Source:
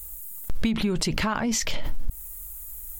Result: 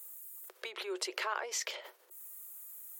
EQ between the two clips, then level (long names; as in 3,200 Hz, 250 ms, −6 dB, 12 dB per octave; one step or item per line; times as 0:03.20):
Chebyshev high-pass with heavy ripple 360 Hz, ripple 3 dB
−6.5 dB